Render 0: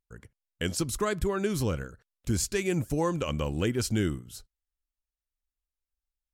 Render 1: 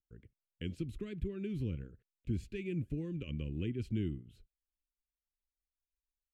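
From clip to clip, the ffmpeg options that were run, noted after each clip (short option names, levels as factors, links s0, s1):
-filter_complex "[0:a]acrossover=split=320|1800|2800[s0][s1][s2][s3];[s1]acompressor=threshold=0.0112:ratio=6[s4];[s0][s4][s2][s3]amix=inputs=4:normalize=0,firequalizer=gain_entry='entry(370,0);entry(810,-22);entry(2500,-3);entry(5400,-26)':delay=0.05:min_phase=1,volume=0.473"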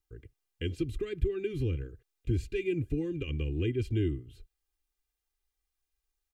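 -af "aecho=1:1:2.5:0.82,volume=1.88"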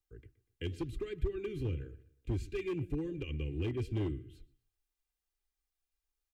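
-filter_complex "[0:a]asplit=2[s0][s1];[s1]adelay=121,lowpass=f=4400:p=1,volume=0.112,asplit=2[s2][s3];[s3]adelay=121,lowpass=f=4400:p=1,volume=0.4,asplit=2[s4][s5];[s5]adelay=121,lowpass=f=4400:p=1,volume=0.4[s6];[s0][s2][s4][s6]amix=inputs=4:normalize=0,flanger=delay=2.1:depth=9.4:regen=-79:speed=0.93:shape=triangular,acrossover=split=110[s7][s8];[s8]volume=37.6,asoftclip=hard,volume=0.0266[s9];[s7][s9]amix=inputs=2:normalize=0"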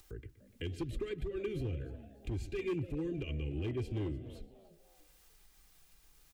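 -filter_complex "[0:a]asplit=2[s0][s1];[s1]acompressor=mode=upward:threshold=0.0158:ratio=2.5,volume=0.794[s2];[s0][s2]amix=inputs=2:normalize=0,alimiter=level_in=1.58:limit=0.0631:level=0:latency=1:release=136,volume=0.631,asplit=4[s3][s4][s5][s6];[s4]adelay=294,afreqshift=140,volume=0.119[s7];[s5]adelay=588,afreqshift=280,volume=0.0452[s8];[s6]adelay=882,afreqshift=420,volume=0.0172[s9];[s3][s7][s8][s9]amix=inputs=4:normalize=0,volume=0.794"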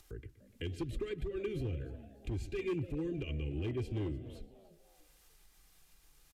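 -af "aresample=32000,aresample=44100"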